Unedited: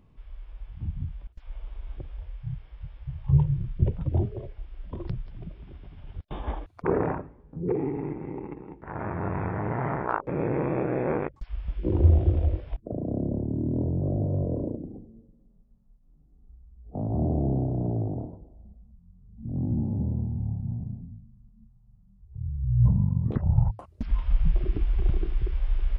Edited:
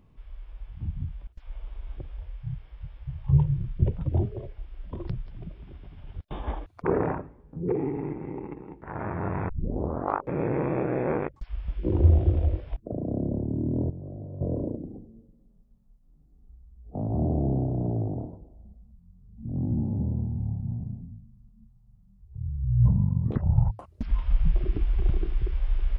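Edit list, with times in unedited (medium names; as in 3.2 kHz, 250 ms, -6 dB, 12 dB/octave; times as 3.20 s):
9.49 s: tape start 0.72 s
13.90–14.41 s: gain -12 dB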